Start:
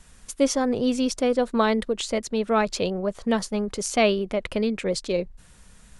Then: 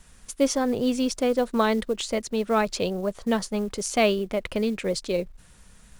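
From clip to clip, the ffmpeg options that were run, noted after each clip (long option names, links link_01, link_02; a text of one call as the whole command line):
ffmpeg -i in.wav -af "acrusher=bits=7:mode=log:mix=0:aa=0.000001,volume=-1dB" out.wav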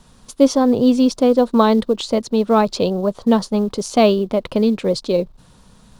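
ffmpeg -i in.wav -af "equalizer=frequency=125:width_type=o:width=1:gain=8,equalizer=frequency=250:width_type=o:width=1:gain=8,equalizer=frequency=500:width_type=o:width=1:gain=5,equalizer=frequency=1000:width_type=o:width=1:gain=9,equalizer=frequency=2000:width_type=o:width=1:gain=-6,equalizer=frequency=4000:width_type=o:width=1:gain=8,equalizer=frequency=8000:width_type=o:width=1:gain=-3" out.wav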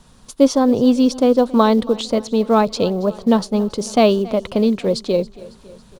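ffmpeg -i in.wav -af "aecho=1:1:276|552|828|1104|1380:0.0944|0.0548|0.0318|0.0184|0.0107" out.wav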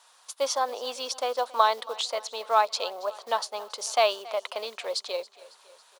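ffmpeg -i in.wav -af "highpass=frequency=710:width=0.5412,highpass=frequency=710:width=1.3066,volume=-2.5dB" out.wav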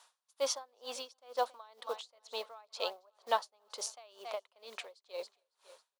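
ffmpeg -i in.wav -af "aeval=exprs='val(0)*pow(10,-33*(0.5-0.5*cos(2*PI*2.1*n/s))/20)':channel_layout=same,volume=-3dB" out.wav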